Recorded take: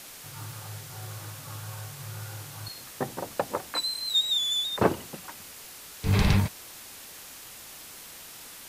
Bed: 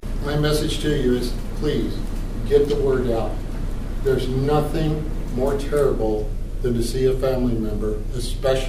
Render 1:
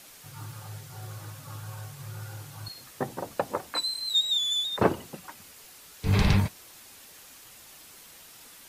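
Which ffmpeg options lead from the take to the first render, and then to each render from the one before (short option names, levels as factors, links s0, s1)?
-af "afftdn=nr=6:nf=-45"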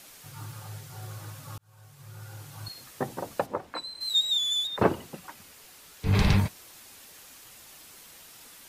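-filter_complex "[0:a]asplit=3[s0][s1][s2];[s0]afade=t=out:st=3.45:d=0.02[s3];[s1]lowpass=f=1500:p=1,afade=t=in:st=3.45:d=0.02,afade=t=out:st=4:d=0.02[s4];[s2]afade=t=in:st=4:d=0.02[s5];[s3][s4][s5]amix=inputs=3:normalize=0,asettb=1/sr,asplit=3[s6][s7][s8];[s6]atrim=end=4.674[s9];[s7]atrim=start=4.67:end=6.15,asetpts=PTS-STARTPTS,afade=t=in:d=0.004:c=qsin,afade=t=out:st=1.476:d=0.004:c=qsin,acrossover=split=4000[s10][s11];[s11]acompressor=threshold=0.00398:ratio=4:attack=1:release=60[s12];[s10][s12]amix=inputs=2:normalize=0[s13];[s8]atrim=start=6.146[s14];[s9][s13]acrossfade=d=0.004:c1=hsin:c2=qsin[s15];[s15][s14]acrossfade=d=0.004:c1=qsin:c2=hsin,asplit=2[s16][s17];[s16]atrim=end=1.58,asetpts=PTS-STARTPTS,afade=t=out:st=1.576:d=0.004:c=hsin[s18];[s17]atrim=start=1.58,asetpts=PTS-STARTPTS,afade=t=in:d=1.05[s19];[s18][s19]concat=n=2:v=0:a=1"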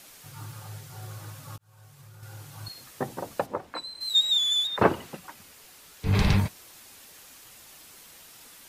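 -filter_complex "[0:a]asettb=1/sr,asplit=3[s0][s1][s2];[s0]atrim=end=1.564[s3];[s1]atrim=start=1.56:end=2.23,asetpts=PTS-STARTPTS,afade=t=in:d=0.004:c=qsin,afade=t=out:st=0.666:d=0.004:c=qsin,acompressor=threshold=0.00501:ratio=4:attack=3.2:release=140:knee=1:detection=peak[s4];[s2]atrim=start=2.226[s5];[s3][s4]acrossfade=d=0.004:c1=hsin:c2=qsin[s6];[s6][s5]acrossfade=d=0.004:c1=qsin:c2=hsin,asettb=1/sr,asplit=3[s7][s8][s9];[s7]atrim=end=4.154[s10];[s8]atrim=start=4.15:end=5.17,asetpts=PTS-STARTPTS,afade=t=in:d=0.004:c=qsin,afade=t=out:st=1.016:d=0.004:c=qsin,equalizer=f=1600:w=0.48:g=5[s11];[s9]atrim=start=5.166[s12];[s10][s11]acrossfade=d=0.004:c1=hsin:c2=qsin[s13];[s13][s12]acrossfade=d=0.004:c1=qsin:c2=hsin"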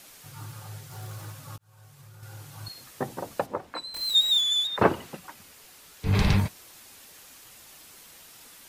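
-filter_complex "[0:a]asettb=1/sr,asplit=3[s0][s1][s2];[s0]atrim=end=0.914[s3];[s1]atrim=start=0.91:end=1.32,asetpts=PTS-STARTPTS,afade=t=in:d=0.004:c=qsin,afade=t=out:st=0.406:d=0.004:c=qsin,aeval=exprs='val(0)+0.5*0.00335*sgn(val(0))':c=same[s4];[s2]atrim=start=1.316[s5];[s3][s4]acrossfade=d=0.004:c1=hsin:c2=qsin[s6];[s6][s5]acrossfade=d=0.004:c1=qsin:c2=hsin,asettb=1/sr,asplit=3[s7][s8][s9];[s7]atrim=end=3.944[s10];[s8]atrim=start=3.94:end=4.41,asetpts=PTS-STARTPTS,afade=t=in:d=0.004:c=qsin,afade=t=out:st=0.466:d=0.004:c=qsin,aeval=exprs='val(0)+0.5*0.0237*sgn(val(0))':c=same[s11];[s9]atrim=start=4.406[s12];[s10][s11]acrossfade=d=0.004:c1=hsin:c2=qsin[s13];[s13][s12]acrossfade=d=0.004:c1=qsin:c2=hsin"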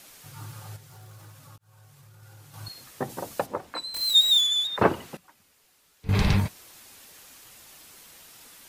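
-filter_complex "[0:a]asettb=1/sr,asplit=3[s0][s1][s2];[s0]atrim=end=0.764[s3];[s1]atrim=start=0.76:end=2.54,asetpts=PTS-STARTPTS,afade=t=in:d=0.004:c=qsin,afade=t=out:st=1.776:d=0.004:c=qsin,acompressor=threshold=0.00282:ratio=2:attack=3.2:release=140:knee=1:detection=peak[s4];[s2]atrim=start=2.536[s5];[s3][s4]acrossfade=d=0.004:c1=hsin:c2=qsin[s6];[s6][s5]acrossfade=d=0.004:c1=qsin:c2=hsin,asettb=1/sr,asplit=3[s7][s8][s9];[s7]atrim=end=3.094[s10];[s8]atrim=start=3.09:end=4.47,asetpts=PTS-STARTPTS,afade=t=in:d=0.004:c=qsin,afade=t=out:st=1.376:d=0.004:c=qsin,highshelf=f=4000:g=6[s11];[s9]atrim=start=4.466[s12];[s10][s11]acrossfade=d=0.004:c1=hsin:c2=qsin[s13];[s13][s12]acrossfade=d=0.004:c1=qsin:c2=hsin,asplit=3[s14][s15][s16];[s14]atrim=end=5.172[s17];[s15]atrim=start=5.168:end=6.092,asetpts=PTS-STARTPTS,volume=0.251[s18];[s16]atrim=start=6.088[s19];[s17][s18]acrossfade=d=0.004:c1=hsin:c2=hsin[s20];[s20][s19]acrossfade=d=0.004:c1=hsin:c2=hsin"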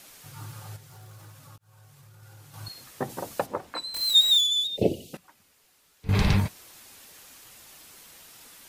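-filter_complex "[0:a]asettb=1/sr,asplit=3[s0][s1][s2];[s0]atrim=end=4.364[s3];[s1]atrim=start=4.36:end=5.14,asetpts=PTS-STARTPTS,afade=t=in:d=0.004:c=qsin,afade=t=out:st=0.776:d=0.004:c=qsin,asuperstop=centerf=1300:order=8:qfactor=0.59[s4];[s2]atrim=start=5.136[s5];[s3][s4]acrossfade=d=0.004:c1=hsin:c2=qsin[s6];[s6][s5]acrossfade=d=0.004:c1=qsin:c2=hsin"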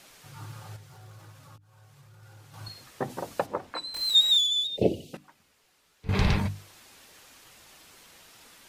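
-af "highshelf=f=8400:g=-11,bandreject=f=50:t=h:w=6,bandreject=f=100:t=h:w=6,bandreject=f=150:t=h:w=6,bandreject=f=200:t=h:w=6,bandreject=f=250:t=h:w=6,bandreject=f=300:t=h:w=6"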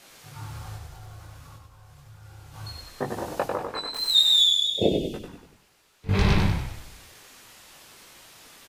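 -filter_complex "[0:a]asplit=2[s0][s1];[s1]adelay=20,volume=0.75[s2];[s0][s2]amix=inputs=2:normalize=0,asplit=2[s3][s4];[s4]asplit=7[s5][s6][s7][s8][s9][s10][s11];[s5]adelay=96,afreqshift=-30,volume=0.596[s12];[s6]adelay=192,afreqshift=-60,volume=0.305[s13];[s7]adelay=288,afreqshift=-90,volume=0.155[s14];[s8]adelay=384,afreqshift=-120,volume=0.0794[s15];[s9]adelay=480,afreqshift=-150,volume=0.0403[s16];[s10]adelay=576,afreqshift=-180,volume=0.0207[s17];[s11]adelay=672,afreqshift=-210,volume=0.0105[s18];[s12][s13][s14][s15][s16][s17][s18]amix=inputs=7:normalize=0[s19];[s3][s19]amix=inputs=2:normalize=0"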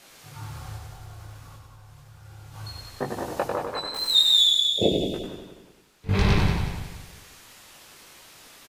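-af "aecho=1:1:181|362|543|724:0.376|0.147|0.0572|0.0223"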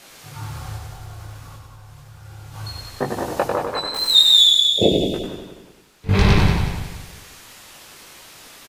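-af "volume=2,alimiter=limit=0.794:level=0:latency=1"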